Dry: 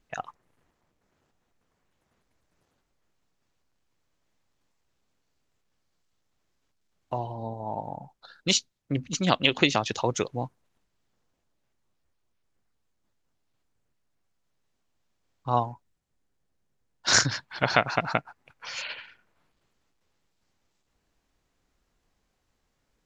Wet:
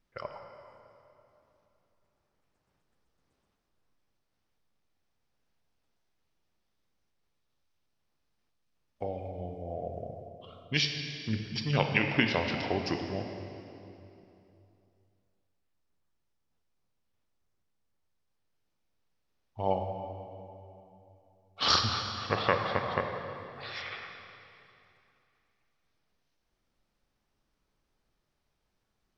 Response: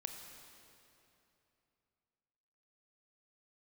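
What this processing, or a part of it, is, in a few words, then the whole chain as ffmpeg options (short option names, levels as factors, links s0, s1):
slowed and reverbed: -filter_complex "[0:a]asetrate=34839,aresample=44100[s0];[1:a]atrim=start_sample=2205[s1];[s0][s1]afir=irnorm=-1:irlink=0,volume=0.794"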